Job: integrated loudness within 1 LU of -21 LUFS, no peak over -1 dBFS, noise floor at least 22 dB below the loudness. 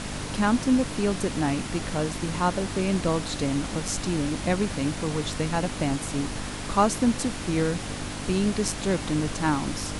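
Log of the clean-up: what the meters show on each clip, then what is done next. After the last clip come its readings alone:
hum 50 Hz; highest harmonic 300 Hz; hum level -35 dBFS; noise floor -34 dBFS; noise floor target -49 dBFS; loudness -26.5 LUFS; peak level -9.0 dBFS; loudness target -21.0 LUFS
-> de-hum 50 Hz, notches 6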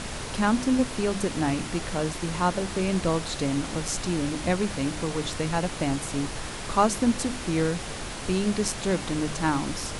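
hum not found; noise floor -35 dBFS; noise floor target -49 dBFS
-> noise print and reduce 14 dB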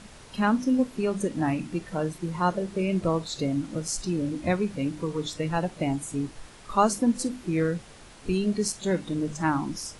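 noise floor -49 dBFS; noise floor target -50 dBFS
-> noise print and reduce 6 dB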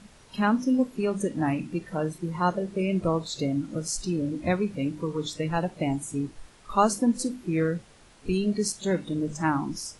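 noise floor -54 dBFS; loudness -28.0 LUFS; peak level -9.0 dBFS; loudness target -21.0 LUFS
-> trim +7 dB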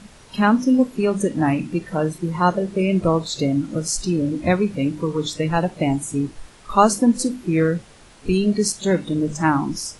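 loudness -21.0 LUFS; peak level -2.0 dBFS; noise floor -47 dBFS

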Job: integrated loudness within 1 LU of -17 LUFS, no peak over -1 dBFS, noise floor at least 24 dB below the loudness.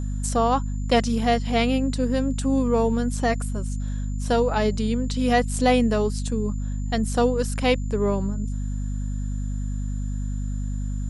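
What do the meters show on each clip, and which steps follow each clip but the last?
hum 50 Hz; highest harmonic 250 Hz; hum level -25 dBFS; steady tone 7.1 kHz; tone level -50 dBFS; loudness -24.0 LUFS; peak level -4.5 dBFS; loudness target -17.0 LUFS
-> hum notches 50/100/150/200/250 Hz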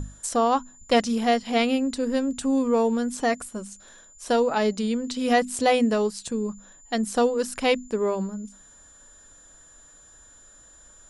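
hum not found; steady tone 7.1 kHz; tone level -50 dBFS
-> band-stop 7.1 kHz, Q 30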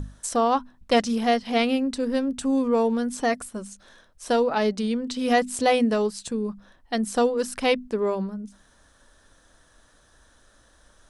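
steady tone not found; loudness -24.5 LUFS; peak level -5.5 dBFS; loudness target -17.0 LUFS
-> trim +7.5 dB; peak limiter -1 dBFS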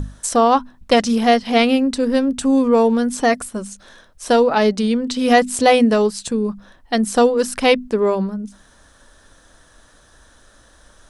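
loudness -17.0 LUFS; peak level -1.0 dBFS; noise floor -52 dBFS

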